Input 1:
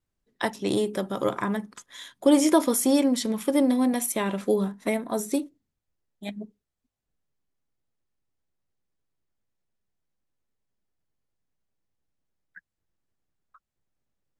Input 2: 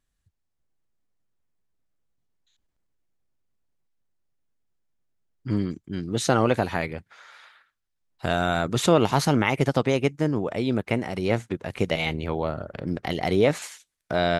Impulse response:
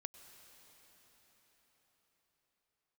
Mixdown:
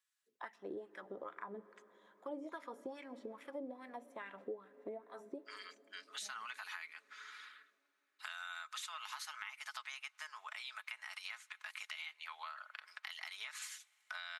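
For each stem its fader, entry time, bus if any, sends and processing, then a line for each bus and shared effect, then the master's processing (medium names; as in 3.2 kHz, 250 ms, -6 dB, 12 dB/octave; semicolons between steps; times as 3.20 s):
-9.5 dB, 0.00 s, send -6 dB, wah-wah 2.4 Hz 390–2000 Hz, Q 3.2
-4.5 dB, 0.00 s, send -16.5 dB, steep high-pass 1.1 kHz 36 dB/octave; comb 4.7 ms, depth 44%; compression, threshold -33 dBFS, peak gain reduction 13 dB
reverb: on, pre-delay 90 ms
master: compression 3:1, threshold -44 dBFS, peak gain reduction 12 dB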